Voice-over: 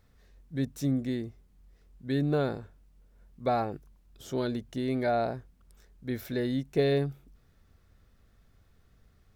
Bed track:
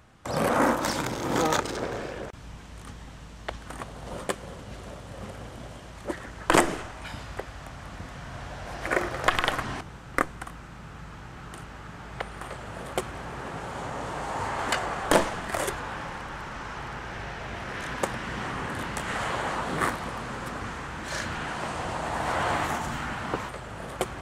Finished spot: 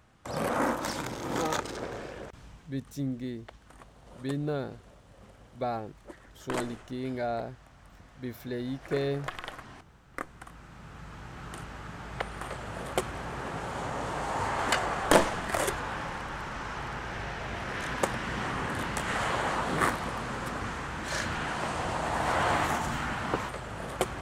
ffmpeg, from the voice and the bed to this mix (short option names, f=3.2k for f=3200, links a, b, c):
-filter_complex "[0:a]adelay=2150,volume=-4.5dB[a];[1:a]volume=9dB,afade=t=out:st=2.4:d=0.34:silence=0.354813,afade=t=in:st=10.1:d=1.43:silence=0.188365[b];[a][b]amix=inputs=2:normalize=0"